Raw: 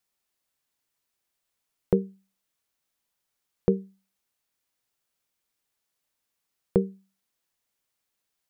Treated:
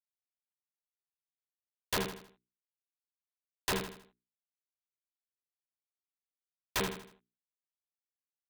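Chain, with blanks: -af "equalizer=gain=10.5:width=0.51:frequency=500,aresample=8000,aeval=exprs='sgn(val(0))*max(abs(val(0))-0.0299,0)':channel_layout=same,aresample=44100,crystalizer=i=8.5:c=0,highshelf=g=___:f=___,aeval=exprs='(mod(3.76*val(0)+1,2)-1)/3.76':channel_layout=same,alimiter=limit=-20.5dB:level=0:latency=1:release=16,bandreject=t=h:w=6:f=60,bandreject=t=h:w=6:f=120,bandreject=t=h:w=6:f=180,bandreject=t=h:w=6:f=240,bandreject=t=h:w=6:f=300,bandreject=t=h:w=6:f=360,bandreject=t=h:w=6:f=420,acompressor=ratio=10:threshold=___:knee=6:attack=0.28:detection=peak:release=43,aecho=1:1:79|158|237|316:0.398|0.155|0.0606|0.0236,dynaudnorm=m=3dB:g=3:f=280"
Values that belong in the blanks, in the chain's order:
10.5, 2100, -29dB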